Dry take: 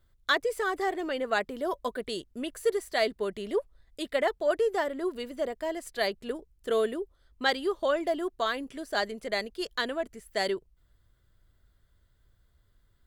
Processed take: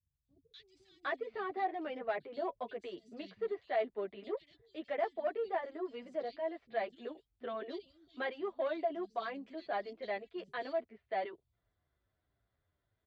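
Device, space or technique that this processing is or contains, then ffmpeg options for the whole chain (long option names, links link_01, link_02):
barber-pole flanger into a guitar amplifier: -filter_complex "[0:a]asplit=2[link_01][link_02];[link_02]adelay=8.7,afreqshift=-2.3[link_03];[link_01][link_03]amix=inputs=2:normalize=1,asoftclip=type=tanh:threshold=-23dB,highpass=94,equalizer=frequency=720:width_type=q:width=4:gain=7,equalizer=frequency=1500:width_type=q:width=4:gain=-3,equalizer=frequency=3000:width_type=q:width=4:gain=-3,lowpass=frequency=4100:width=0.5412,lowpass=frequency=4100:width=1.3066,acrossover=split=4100[link_04][link_05];[link_05]acompressor=threshold=-56dB:ratio=4:attack=1:release=60[link_06];[link_04][link_06]amix=inputs=2:normalize=0,equalizer=frequency=2400:width_type=o:width=0.33:gain=3,acrossover=split=180|3900[link_07][link_08][link_09];[link_09]adelay=250[link_10];[link_08]adelay=760[link_11];[link_07][link_11][link_10]amix=inputs=3:normalize=0,volume=-5.5dB"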